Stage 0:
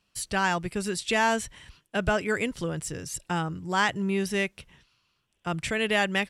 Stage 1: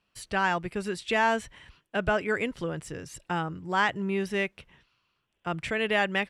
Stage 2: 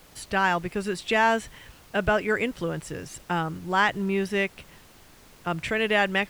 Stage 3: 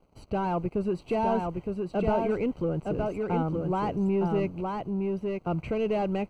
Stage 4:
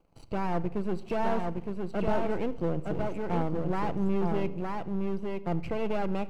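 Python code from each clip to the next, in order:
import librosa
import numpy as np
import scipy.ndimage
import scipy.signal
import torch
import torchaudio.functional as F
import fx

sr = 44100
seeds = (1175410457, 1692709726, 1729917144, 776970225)

y1 = fx.bass_treble(x, sr, bass_db=-4, treble_db=-11)
y2 = fx.dmg_noise_colour(y1, sr, seeds[0], colour='pink', level_db=-55.0)
y2 = y2 * 10.0 ** (3.0 / 20.0)
y3 = fx.leveller(y2, sr, passes=3)
y3 = np.convolve(y3, np.full(25, 1.0 / 25))[:len(y3)]
y3 = y3 + 10.0 ** (-3.5 / 20.0) * np.pad(y3, (int(914 * sr / 1000.0), 0))[:len(y3)]
y3 = y3 * 10.0 ** (-8.0 / 20.0)
y4 = np.where(y3 < 0.0, 10.0 ** (-12.0 / 20.0) * y3, y3)
y4 = fx.room_shoebox(y4, sr, seeds[1], volume_m3=3200.0, walls='furnished', distance_m=0.73)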